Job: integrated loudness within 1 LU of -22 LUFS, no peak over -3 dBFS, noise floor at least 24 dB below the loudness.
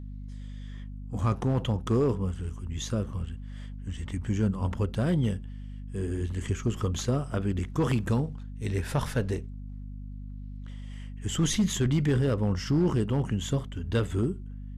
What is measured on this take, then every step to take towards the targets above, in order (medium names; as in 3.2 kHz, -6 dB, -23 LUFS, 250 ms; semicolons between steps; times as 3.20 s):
clipped samples 0.6%; clipping level -18.0 dBFS; hum 50 Hz; highest harmonic 250 Hz; hum level -37 dBFS; loudness -29.0 LUFS; peak level -18.0 dBFS; loudness target -22.0 LUFS
-> clip repair -18 dBFS; de-hum 50 Hz, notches 5; trim +7 dB